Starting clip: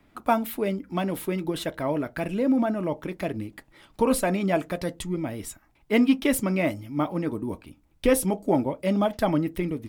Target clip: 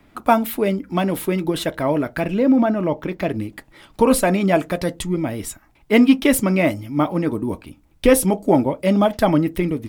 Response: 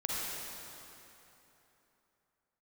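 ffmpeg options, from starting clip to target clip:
-filter_complex "[0:a]asettb=1/sr,asplit=3[link_01][link_02][link_03];[link_01]atrim=end=2.214[link_04];[link_02]atrim=start=2.21:end=3.3,asetpts=PTS-STARTPTS,afade=type=in:duration=0.004:curve=qsin,afade=type=out:start_time=1.086:duration=0.004:curve=qsin,equalizer=frequency=10000:width_type=o:width=0.91:gain=-10.5[link_05];[link_03]atrim=start=3.296[link_06];[link_04][link_05]acrossfade=duration=0.004:curve1=hsin:curve2=qsin[link_07];[link_07][link_06]acrossfade=duration=0.004:curve1=qsin:curve2=hsin,volume=7dB"

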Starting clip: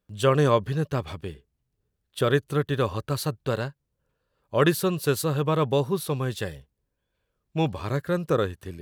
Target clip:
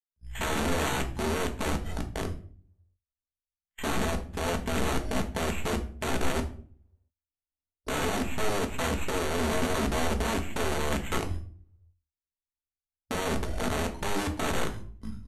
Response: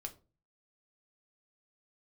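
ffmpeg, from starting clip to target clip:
-filter_complex "[0:a]aeval=exprs='if(lt(val(0),0),0.708*val(0),val(0))':channel_layout=same,agate=range=-33dB:threshold=-37dB:ratio=16:detection=peak,equalizer=frequency=120:width_type=o:width=0.66:gain=10.5,aecho=1:1:5.6:0.46,acrossover=split=310[link_01][link_02];[link_01]dynaudnorm=framelen=210:gausssize=7:maxgain=7dB[link_03];[link_03][link_02]amix=inputs=2:normalize=0,alimiter=limit=-14dB:level=0:latency=1:release=108,aresample=16000,aeval=exprs='(mod(11.2*val(0)+1,2)-1)/11.2':channel_layout=same,aresample=44100,acrusher=samples=5:mix=1:aa=0.000001[link_04];[1:a]atrim=start_sample=2205[link_05];[link_04][link_05]afir=irnorm=-1:irlink=0,asetrate=25442,aresample=44100"

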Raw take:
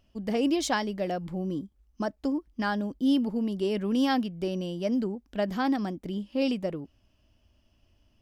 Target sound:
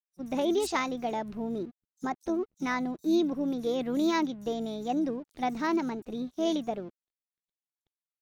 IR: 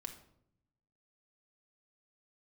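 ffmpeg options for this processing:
-filter_complex "[0:a]aeval=exprs='sgn(val(0))*max(abs(val(0))-0.00168,0)':channel_layout=same,asplit=2[link_01][link_02];[link_02]asetrate=29433,aresample=44100,atempo=1.49831,volume=-15dB[link_03];[link_01][link_03]amix=inputs=2:normalize=0,acrossover=split=5500[link_04][link_05];[link_04]adelay=50[link_06];[link_06][link_05]amix=inputs=2:normalize=0,asetrate=53981,aresample=44100,atempo=0.816958,volume=-1.5dB"

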